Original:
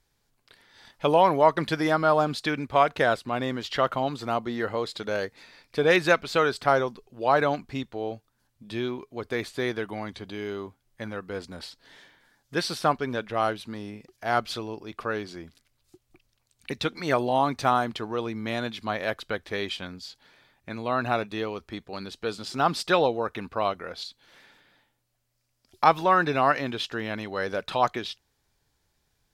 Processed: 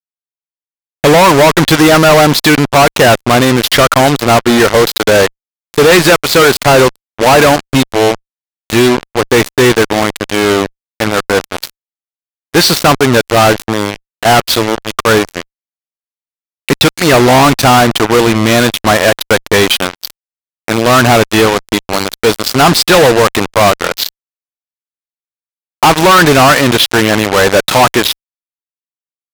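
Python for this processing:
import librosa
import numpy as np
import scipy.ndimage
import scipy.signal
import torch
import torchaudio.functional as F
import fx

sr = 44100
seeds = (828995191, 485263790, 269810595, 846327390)

y = fx.fuzz(x, sr, gain_db=37.0, gate_db=-35.0)
y = fx.cheby_harmonics(y, sr, harmonics=(3, 7), levels_db=(-38, -17), full_scale_db=-10.5)
y = y * librosa.db_to_amplitude(9.0)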